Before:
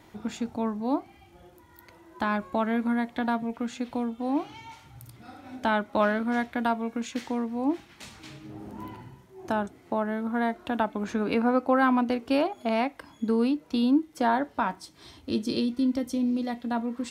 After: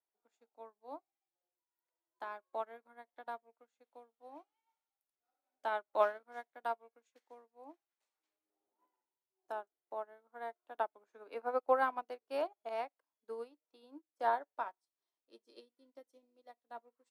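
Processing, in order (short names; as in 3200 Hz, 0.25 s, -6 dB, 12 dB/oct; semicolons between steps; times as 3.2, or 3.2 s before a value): HPF 440 Hz 24 dB/oct; bell 3100 Hz -7.5 dB 2.4 oct; upward expander 2.5:1, over -48 dBFS; gain -1.5 dB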